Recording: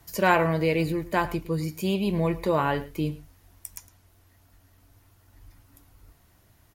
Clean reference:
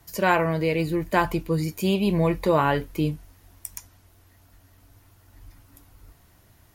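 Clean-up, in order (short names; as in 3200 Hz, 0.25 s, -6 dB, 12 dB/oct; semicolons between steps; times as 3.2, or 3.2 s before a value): inverse comb 0.109 s -18 dB; gain correction +3.5 dB, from 0.92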